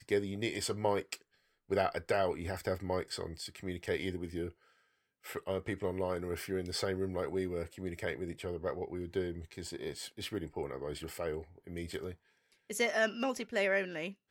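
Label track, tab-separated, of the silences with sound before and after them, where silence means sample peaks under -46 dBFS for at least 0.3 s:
1.160000	1.700000	silence
4.500000	5.250000	silence
12.140000	12.700000	silence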